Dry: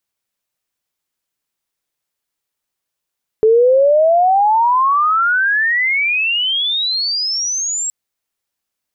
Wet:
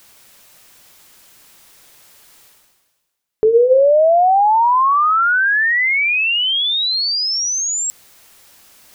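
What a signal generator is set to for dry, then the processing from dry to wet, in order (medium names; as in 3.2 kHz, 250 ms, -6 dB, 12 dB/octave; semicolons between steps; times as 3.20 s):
sweep logarithmic 430 Hz -> 7.7 kHz -7 dBFS -> -17.5 dBFS 4.47 s
hum notches 50/100/150/200/250/300/350/400/450/500 Hz; reverse; upward compressor, threshold -22 dBFS; reverse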